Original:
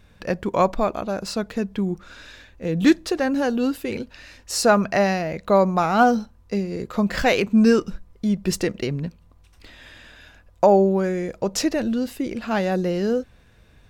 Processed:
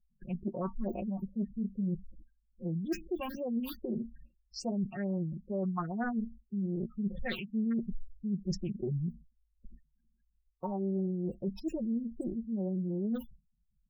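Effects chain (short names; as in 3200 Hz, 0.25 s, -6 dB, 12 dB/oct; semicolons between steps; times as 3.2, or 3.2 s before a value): Wiener smoothing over 41 samples; modulation noise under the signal 12 dB; in parallel at -9.5 dB: soft clip -14 dBFS, distortion -12 dB; on the sum: gate with hold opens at -37 dBFS; resonator 230 Hz, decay 0.19 s, harmonics all, mix 60%; phaser stages 6, 2.4 Hz, lowest notch 460–1500 Hz; comb 5.5 ms, depth 91%; reverse; compressor 8:1, threshold -30 dBFS, peak gain reduction 19 dB; reverse; spectral gate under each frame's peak -15 dB strong; Doppler distortion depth 0.23 ms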